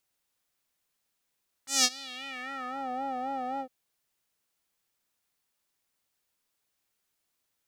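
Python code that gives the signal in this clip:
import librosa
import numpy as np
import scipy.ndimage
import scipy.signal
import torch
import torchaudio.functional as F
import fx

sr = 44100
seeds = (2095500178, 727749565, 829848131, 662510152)

y = fx.sub_patch_vibrato(sr, seeds[0], note=60, wave='square', wave2='sine', interval_st=12, detune_cents=16, level2_db=-8.5, sub_db=-22.0, noise_db=-20, kind='bandpass', cutoff_hz=470.0, q=2.5, env_oct=4.0, env_decay_s=1.23, env_sustain_pct=20, attack_ms=171.0, decay_s=0.05, sustain_db=-23.0, release_s=0.08, note_s=1.93, lfo_hz=3.8, vibrato_cents=85)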